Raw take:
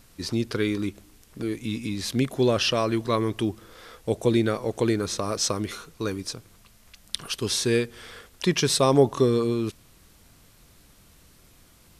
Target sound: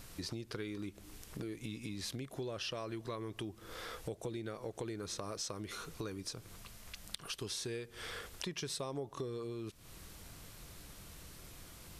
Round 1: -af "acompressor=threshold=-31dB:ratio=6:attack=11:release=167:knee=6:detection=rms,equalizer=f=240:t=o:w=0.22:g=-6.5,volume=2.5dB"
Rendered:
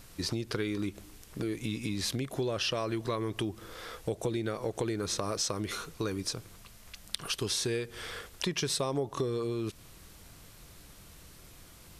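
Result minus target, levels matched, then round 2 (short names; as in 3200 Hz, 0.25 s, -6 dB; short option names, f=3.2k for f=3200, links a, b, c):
compressor: peak gain reduction -9 dB
-af "acompressor=threshold=-42dB:ratio=6:attack=11:release=167:knee=6:detection=rms,equalizer=f=240:t=o:w=0.22:g=-6.5,volume=2.5dB"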